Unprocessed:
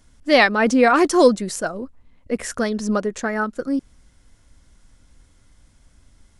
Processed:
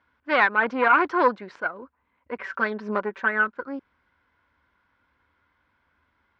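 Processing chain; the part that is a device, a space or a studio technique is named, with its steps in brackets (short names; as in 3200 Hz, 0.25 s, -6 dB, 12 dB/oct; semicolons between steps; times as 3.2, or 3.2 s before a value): 2.38–3.48 comb 5.2 ms, depth 89%; guitar amplifier (tube stage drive 10 dB, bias 0.7; tone controls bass -13 dB, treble -15 dB; speaker cabinet 76–4500 Hz, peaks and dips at 76 Hz +9 dB, 640 Hz -3 dB, 1000 Hz +10 dB, 1500 Hz +10 dB, 2300 Hz +5 dB); gain -3.5 dB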